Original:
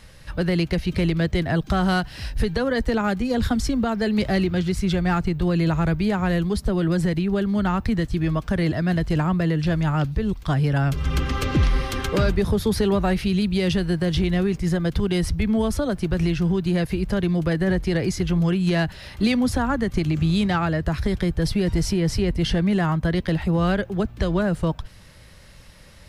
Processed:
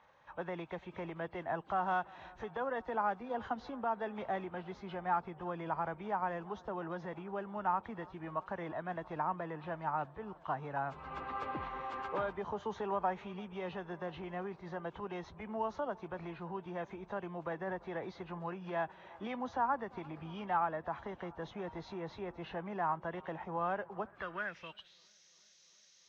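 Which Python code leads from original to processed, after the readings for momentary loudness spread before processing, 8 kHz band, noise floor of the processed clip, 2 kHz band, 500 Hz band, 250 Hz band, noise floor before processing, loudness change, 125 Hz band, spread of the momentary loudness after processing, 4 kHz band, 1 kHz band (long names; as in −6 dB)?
3 LU, below −25 dB, −65 dBFS, −14.0 dB, −14.5 dB, −23.5 dB, −45 dBFS, −17.0 dB, −27.0 dB, 9 LU, −24.0 dB, −5.5 dB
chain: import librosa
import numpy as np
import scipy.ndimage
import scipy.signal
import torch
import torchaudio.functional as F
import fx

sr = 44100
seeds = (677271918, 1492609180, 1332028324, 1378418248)

y = fx.freq_compress(x, sr, knee_hz=2200.0, ratio=1.5)
y = fx.echo_bbd(y, sr, ms=343, stages=4096, feedback_pct=79, wet_db=-23.5)
y = fx.filter_sweep_bandpass(y, sr, from_hz=910.0, to_hz=5600.0, start_s=24.01, end_s=25.12, q=3.1)
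y = F.gain(torch.from_numpy(y), -2.0).numpy()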